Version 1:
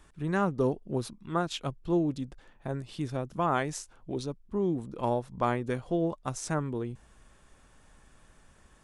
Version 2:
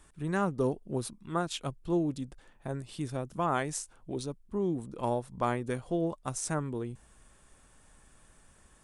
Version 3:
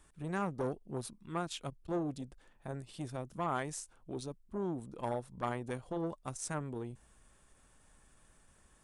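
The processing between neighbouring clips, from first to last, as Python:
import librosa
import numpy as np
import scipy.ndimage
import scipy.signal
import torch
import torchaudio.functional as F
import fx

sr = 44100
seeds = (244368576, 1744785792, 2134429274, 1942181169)

y1 = fx.peak_eq(x, sr, hz=9100.0, db=9.0, octaves=0.65)
y1 = y1 * librosa.db_to_amplitude(-2.0)
y2 = fx.transformer_sat(y1, sr, knee_hz=660.0)
y2 = y2 * librosa.db_to_amplitude(-4.5)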